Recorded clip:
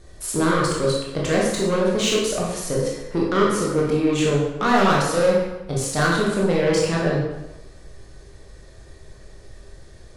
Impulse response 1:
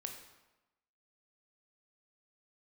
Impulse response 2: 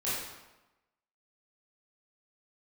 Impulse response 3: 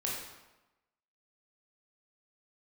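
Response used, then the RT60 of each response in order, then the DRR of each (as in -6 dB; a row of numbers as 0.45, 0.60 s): 3; 1.0, 1.0, 1.0 s; 3.5, -10.5, -4.0 dB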